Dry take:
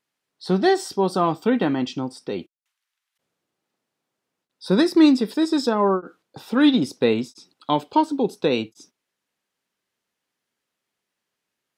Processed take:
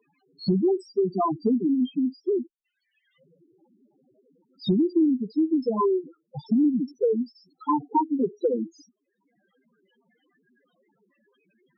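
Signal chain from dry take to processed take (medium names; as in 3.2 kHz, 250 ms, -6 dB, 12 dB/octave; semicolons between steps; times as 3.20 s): loudest bins only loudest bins 2; three bands compressed up and down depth 100%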